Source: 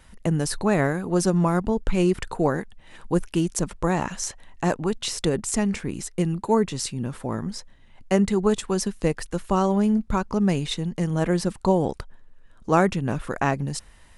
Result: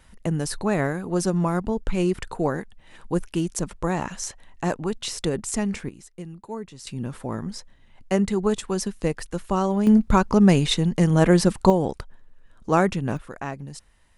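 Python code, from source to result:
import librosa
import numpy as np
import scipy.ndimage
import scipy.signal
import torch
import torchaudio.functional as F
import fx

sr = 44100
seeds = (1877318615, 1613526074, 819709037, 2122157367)

y = fx.gain(x, sr, db=fx.steps((0.0, -2.0), (5.89, -13.5), (6.87, -1.5), (9.87, 6.0), (11.7, -0.5), (13.17, -9.0)))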